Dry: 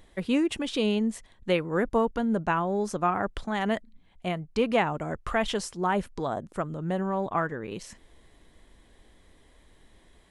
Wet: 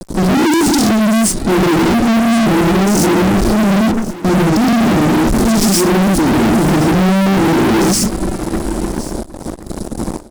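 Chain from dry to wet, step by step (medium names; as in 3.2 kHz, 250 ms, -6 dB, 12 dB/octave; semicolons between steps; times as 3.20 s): gate with hold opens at -46 dBFS; FFT filter 100 Hz 0 dB, 340 Hz +11 dB, 520 Hz -22 dB, 3.1 kHz -28 dB, 4.7 kHz -2 dB; in parallel at -2 dB: compressor with a negative ratio -31 dBFS, ratio -0.5; on the sum: gated-style reverb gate 150 ms rising, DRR -6 dB; fuzz box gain 39 dB, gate -40 dBFS; on a send: delay 1070 ms -16.5 dB; on the sum: trim +2.5 dB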